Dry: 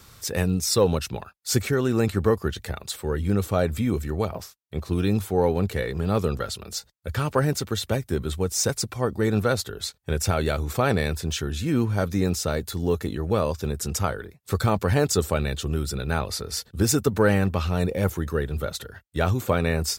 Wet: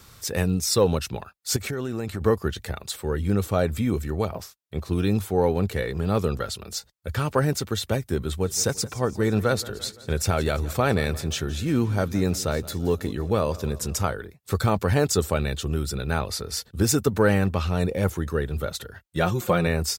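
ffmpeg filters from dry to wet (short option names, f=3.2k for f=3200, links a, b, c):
-filter_complex "[0:a]asettb=1/sr,asplit=3[a][b][c];[a]atrim=end=1.564[d];[b]atrim=start=1.56:end=2.21,asetpts=PTS-STARTPTS,afade=t=in:d=0.004:c=qsin,afade=t=out:st=0.646:d=0.004:c=qsin,acompressor=threshold=-25dB:ratio=6:attack=3.2:release=140:knee=1:detection=peak[e];[c]atrim=start=2.206[f];[d][e]acrossfade=d=0.004:c1=hsin:c2=qsin[g];[g][f]acrossfade=d=0.004:c1=qsin:c2=hsin,asplit=3[h][i][j];[h]afade=t=out:st=8.36:d=0.02[k];[i]aecho=1:1:171|342|513|684|855:0.119|0.0677|0.0386|0.022|0.0125,afade=t=in:st=8.36:d=0.02,afade=t=out:st=14.07:d=0.02[l];[j]afade=t=in:st=14.07:d=0.02[m];[k][l][m]amix=inputs=3:normalize=0,asettb=1/sr,asplit=3[n][o][p];[n]atrim=end=17.494[q];[o]atrim=start=17.49:end=18.44,asetpts=PTS-STARTPTS,afade=t=in:d=0.004:c=qsin,afade=t=out:st=0.946:d=0.004:c=qsin,equalizer=f=14k:w=3.3:g=-6.5[r];[p]atrim=start=18.436[s];[q][r]acrossfade=d=0.004:c1=hsin:c2=qsin[t];[t][s]acrossfade=d=0.004:c1=qsin:c2=hsin,asettb=1/sr,asplit=3[u][v][w];[u]atrim=end=19.044[x];[v]atrim=start=19.04:end=19.67,asetpts=PTS-STARTPTS,afade=t=in:d=0.004:c=qsin,afade=t=out:st=0.626:d=0.004:c=qsin,aecho=1:1:5.6:0.65,atrim=end_sample=27783[y];[w]atrim=start=19.666[z];[x][y]acrossfade=d=0.004:c1=hsin:c2=qsin[aa];[aa][z]acrossfade=d=0.004:c1=qsin:c2=hsin"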